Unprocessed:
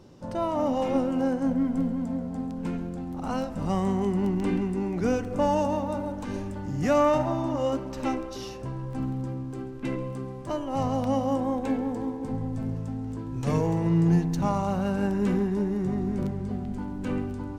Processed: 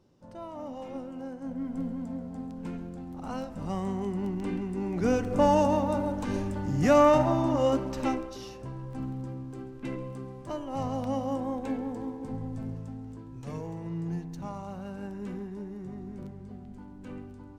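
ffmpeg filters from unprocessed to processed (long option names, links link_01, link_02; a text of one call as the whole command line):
ffmpeg -i in.wav -af "volume=2dB,afade=type=in:start_time=1.38:duration=0.5:silence=0.421697,afade=type=in:start_time=4.65:duration=0.72:silence=0.398107,afade=type=out:start_time=7.85:duration=0.53:silence=0.446684,afade=type=out:start_time=12.58:duration=0.92:silence=0.421697" out.wav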